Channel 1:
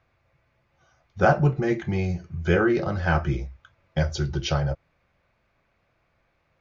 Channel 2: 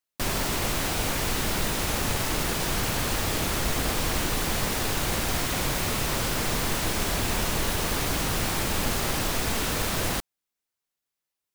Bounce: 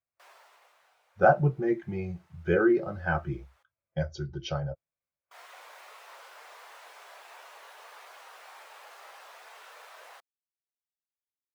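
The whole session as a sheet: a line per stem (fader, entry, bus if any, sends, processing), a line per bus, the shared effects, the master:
−0.5 dB, 0.00 s, no send, no processing
−1.5 dB, 0.00 s, muted 0:03.63–0:05.31, no send, Bessel high-pass filter 780 Hz, order 6; high-shelf EQ 2,500 Hz −9.5 dB; automatic ducking −13 dB, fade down 1.05 s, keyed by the first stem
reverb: not used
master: low-shelf EQ 170 Hz −9.5 dB; every bin expanded away from the loudest bin 1.5 to 1

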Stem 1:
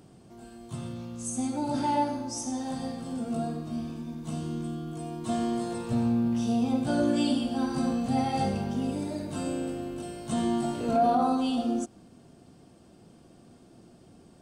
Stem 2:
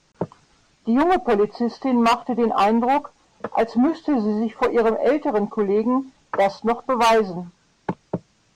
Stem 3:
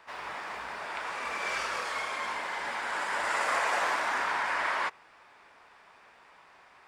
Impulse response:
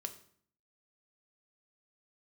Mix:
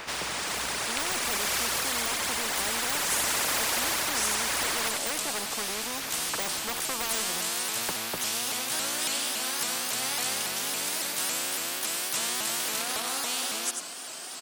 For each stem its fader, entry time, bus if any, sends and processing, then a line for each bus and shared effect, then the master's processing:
−3.0 dB, 1.85 s, no send, echo send −16 dB, high-pass filter 1,400 Hz 12 dB per octave; high-shelf EQ 7,700 Hz +8.5 dB; pitch modulation by a square or saw wave saw up 3.6 Hz, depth 160 cents
−17.0 dB, 0.00 s, no send, no echo send, bass and treble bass −15 dB, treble +6 dB; de-essing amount 85%
−2.0 dB, 0.00 s, no send, echo send −9.5 dB, reverb reduction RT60 2 s; high-shelf EQ 8,100 Hz +8.5 dB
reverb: not used
echo: single-tap delay 94 ms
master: automatic gain control gain up to 6.5 dB; every bin compressed towards the loudest bin 4 to 1

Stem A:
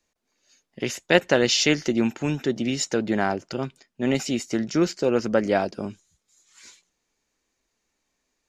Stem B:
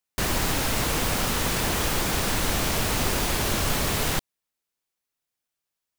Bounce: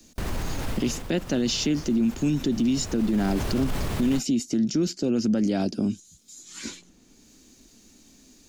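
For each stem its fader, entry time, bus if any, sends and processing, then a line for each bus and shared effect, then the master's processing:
+2.0 dB, 0.00 s, no send, octave-band graphic EQ 250/500/1,000/2,000 Hz +9/−7/−10/−10 dB; multiband upward and downward compressor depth 70%
0:00.71 −4.5 dB → 0:01.12 −14 dB → 0:02.64 −14 dB → 0:03.43 −3 dB, 0.00 s, no send, spectral tilt −2 dB per octave; brickwall limiter −16 dBFS, peak gain reduction 9 dB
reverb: not used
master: brickwall limiter −16 dBFS, peak gain reduction 9 dB

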